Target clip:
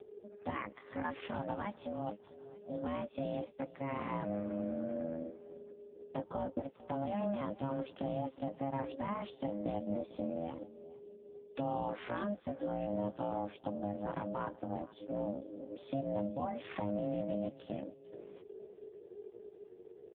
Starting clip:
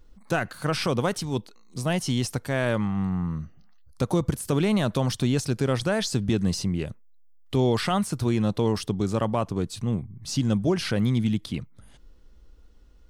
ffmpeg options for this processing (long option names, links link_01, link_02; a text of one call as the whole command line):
ffmpeg -i in.wav -filter_complex "[0:a]lowpass=frequency=2300:poles=1,aeval=exprs='val(0)*sin(2*PI*410*n/s)':channel_layout=same,atempo=0.65,acompressor=threshold=-46dB:ratio=2,asplit=2[link_01][link_02];[link_02]adelay=19,volume=-13.5dB[link_03];[link_01][link_03]amix=inputs=2:normalize=0,asplit=2[link_04][link_05];[link_05]aecho=0:1:449|898|1347:0.106|0.0455|0.0196[link_06];[link_04][link_06]amix=inputs=2:normalize=0,volume=3dB" -ar 8000 -c:a libopencore_amrnb -b:a 5150 out.amr